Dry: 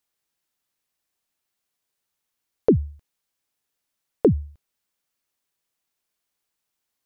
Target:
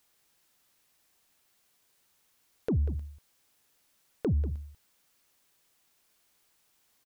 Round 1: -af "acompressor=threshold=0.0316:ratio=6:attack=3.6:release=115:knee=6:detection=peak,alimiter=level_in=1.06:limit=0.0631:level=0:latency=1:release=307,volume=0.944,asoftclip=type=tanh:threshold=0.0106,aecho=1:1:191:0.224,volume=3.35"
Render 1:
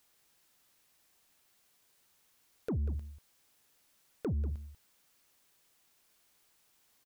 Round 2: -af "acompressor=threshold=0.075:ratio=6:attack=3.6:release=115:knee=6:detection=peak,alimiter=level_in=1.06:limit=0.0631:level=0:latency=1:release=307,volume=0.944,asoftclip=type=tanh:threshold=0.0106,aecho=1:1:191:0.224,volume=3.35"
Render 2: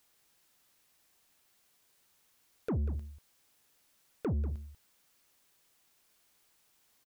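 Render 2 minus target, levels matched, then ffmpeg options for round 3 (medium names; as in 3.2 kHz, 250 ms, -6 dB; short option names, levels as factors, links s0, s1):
saturation: distortion +10 dB
-af "acompressor=threshold=0.075:ratio=6:attack=3.6:release=115:knee=6:detection=peak,alimiter=level_in=1.06:limit=0.0631:level=0:latency=1:release=307,volume=0.944,asoftclip=type=tanh:threshold=0.0282,aecho=1:1:191:0.224,volume=3.35"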